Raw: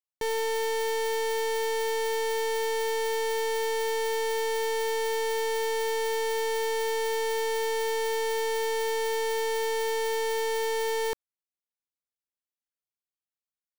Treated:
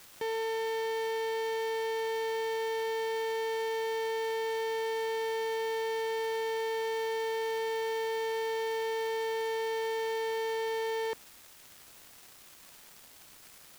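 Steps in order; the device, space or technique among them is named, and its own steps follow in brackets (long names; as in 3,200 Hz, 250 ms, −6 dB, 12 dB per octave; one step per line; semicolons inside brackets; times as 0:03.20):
78 rpm shellac record (band-pass filter 110–4,100 Hz; surface crackle 340 per second −38 dBFS; white noise bed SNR 22 dB)
level −4 dB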